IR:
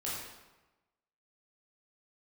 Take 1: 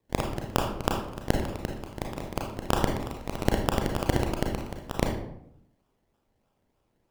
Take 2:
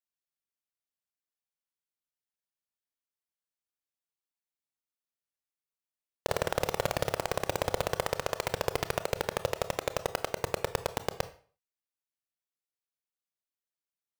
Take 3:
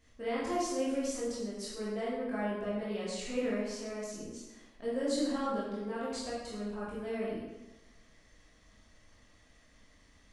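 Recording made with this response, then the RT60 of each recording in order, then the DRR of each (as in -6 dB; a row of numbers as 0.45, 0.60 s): 3; 0.75, 0.45, 1.1 s; 1.0, 11.5, -7.5 dB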